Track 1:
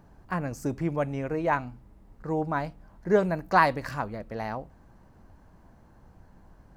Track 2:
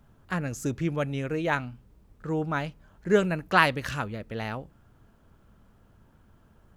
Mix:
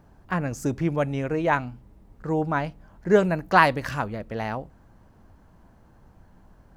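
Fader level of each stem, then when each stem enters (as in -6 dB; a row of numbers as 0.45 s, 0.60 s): 0.0 dB, -5.0 dB; 0.00 s, 0.00 s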